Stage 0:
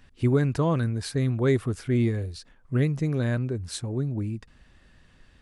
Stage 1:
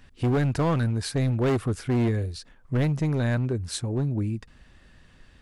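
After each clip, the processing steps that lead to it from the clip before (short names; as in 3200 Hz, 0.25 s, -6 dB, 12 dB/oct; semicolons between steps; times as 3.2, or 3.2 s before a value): overloaded stage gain 22 dB; gain +2.5 dB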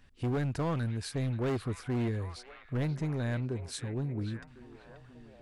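delay with a stepping band-pass 0.533 s, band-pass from 2700 Hz, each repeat -0.7 oct, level -6 dB; gain -8 dB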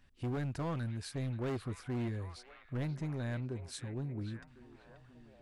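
notch 450 Hz, Q 12; gain -5 dB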